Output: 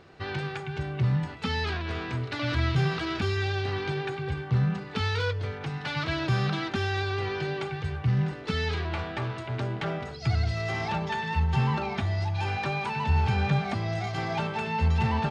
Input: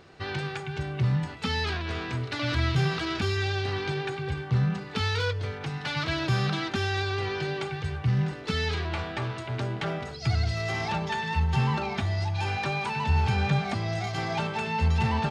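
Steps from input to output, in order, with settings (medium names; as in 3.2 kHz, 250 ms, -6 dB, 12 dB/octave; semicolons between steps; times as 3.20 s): treble shelf 5.1 kHz -7.5 dB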